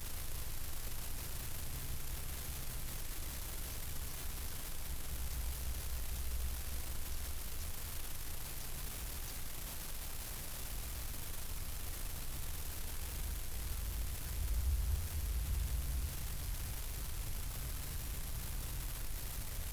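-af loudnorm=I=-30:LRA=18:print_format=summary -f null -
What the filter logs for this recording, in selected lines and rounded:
Input Integrated:    -43.1 LUFS
Input True Peak:     -24.6 dBTP
Input LRA:             3.6 LU
Input Threshold:     -53.1 LUFS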